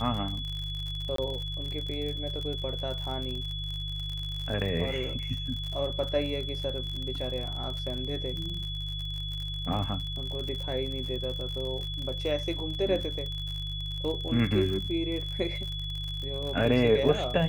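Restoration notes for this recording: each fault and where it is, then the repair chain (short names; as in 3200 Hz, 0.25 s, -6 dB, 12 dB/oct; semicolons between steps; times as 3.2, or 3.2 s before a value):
crackle 57/s -34 dBFS
hum 50 Hz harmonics 3 -36 dBFS
tone 3400 Hz -36 dBFS
1.16–1.18 gap 23 ms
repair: de-click; de-hum 50 Hz, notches 3; notch 3400 Hz, Q 30; interpolate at 1.16, 23 ms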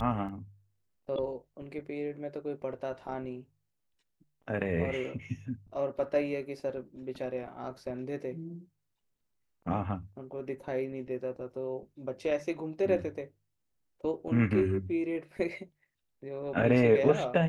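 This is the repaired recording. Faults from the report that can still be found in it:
none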